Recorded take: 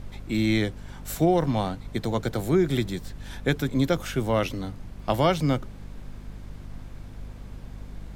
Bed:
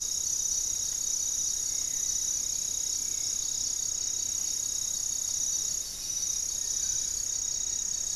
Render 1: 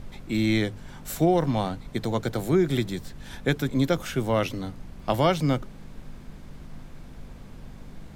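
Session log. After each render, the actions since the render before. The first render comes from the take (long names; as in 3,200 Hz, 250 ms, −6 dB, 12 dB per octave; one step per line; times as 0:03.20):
hum removal 50 Hz, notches 2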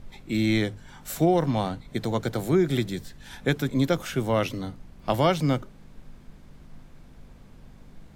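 noise reduction from a noise print 6 dB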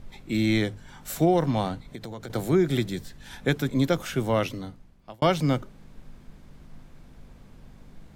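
0:01.81–0:02.30: downward compressor 12 to 1, threshold −33 dBFS
0:04.35–0:05.22: fade out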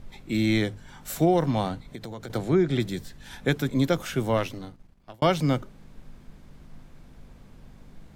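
0:02.38–0:02.80: high-frequency loss of the air 80 metres
0:04.37–0:05.14: gain on one half-wave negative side −7 dB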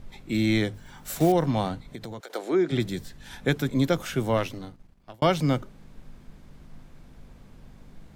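0:00.74–0:01.34: one scale factor per block 5 bits
0:02.19–0:02.71: high-pass filter 540 Hz → 190 Hz 24 dB per octave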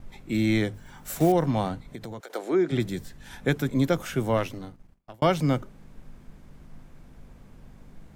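noise gate with hold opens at −45 dBFS
parametric band 4,000 Hz −4 dB 0.98 octaves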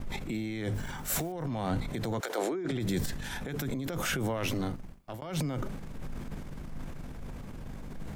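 compressor whose output falls as the input rises −32 dBFS, ratio −1
transient designer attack −5 dB, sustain +7 dB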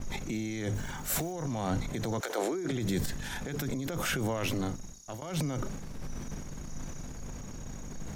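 mix in bed −22.5 dB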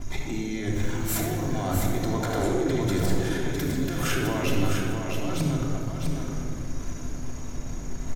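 single-tap delay 657 ms −5.5 dB
rectangular room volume 3,500 cubic metres, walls mixed, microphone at 3.1 metres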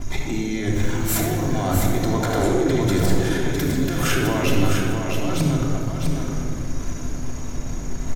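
level +5.5 dB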